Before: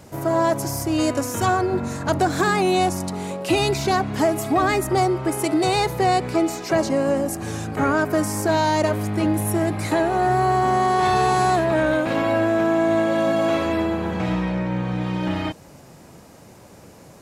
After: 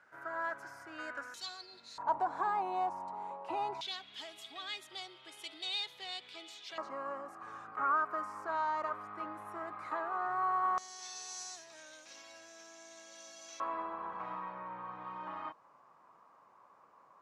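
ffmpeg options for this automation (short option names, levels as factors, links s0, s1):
-af "asetnsamples=n=441:p=0,asendcmd='1.34 bandpass f 4200;1.98 bandpass f 940;3.81 bandpass f 3400;6.78 bandpass f 1200;10.78 bandpass f 5900;13.6 bandpass f 1100',bandpass=f=1500:t=q:w=7.9:csg=0"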